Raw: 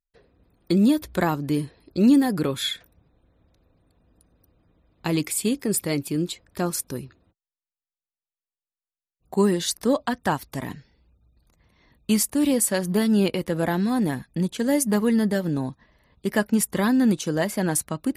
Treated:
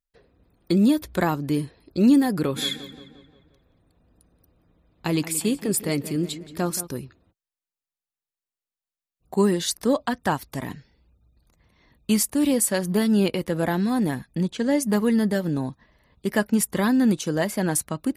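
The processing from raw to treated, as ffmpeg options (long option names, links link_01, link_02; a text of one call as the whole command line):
ffmpeg -i in.wav -filter_complex "[0:a]asplit=3[link_01][link_02][link_03];[link_01]afade=type=out:start_time=2.55:duration=0.02[link_04];[link_02]asplit=2[link_05][link_06];[link_06]adelay=176,lowpass=frequency=3500:poles=1,volume=-13.5dB,asplit=2[link_07][link_08];[link_08]adelay=176,lowpass=frequency=3500:poles=1,volume=0.55,asplit=2[link_09][link_10];[link_10]adelay=176,lowpass=frequency=3500:poles=1,volume=0.55,asplit=2[link_11][link_12];[link_12]adelay=176,lowpass=frequency=3500:poles=1,volume=0.55,asplit=2[link_13][link_14];[link_14]adelay=176,lowpass=frequency=3500:poles=1,volume=0.55,asplit=2[link_15][link_16];[link_16]adelay=176,lowpass=frequency=3500:poles=1,volume=0.55[link_17];[link_05][link_07][link_09][link_11][link_13][link_15][link_17]amix=inputs=7:normalize=0,afade=type=in:start_time=2.55:duration=0.02,afade=type=out:start_time=6.86:duration=0.02[link_18];[link_03]afade=type=in:start_time=6.86:duration=0.02[link_19];[link_04][link_18][link_19]amix=inputs=3:normalize=0,asettb=1/sr,asplit=3[link_20][link_21][link_22];[link_20]atrim=end=14.434[link_23];[link_21]atrim=start=14.43:end=14.83,asetpts=PTS-STARTPTS,afade=type=in:duration=0.004:curve=qsin,afade=type=out:start_time=0.396:duration=0.004:curve=qsin,lowpass=6400[link_24];[link_22]atrim=start=14.826[link_25];[link_23][link_24]acrossfade=duration=0.004:curve1=hsin:curve2=qsin[link_26];[link_26][link_25]acrossfade=duration=0.004:curve1=qsin:curve2=hsin" out.wav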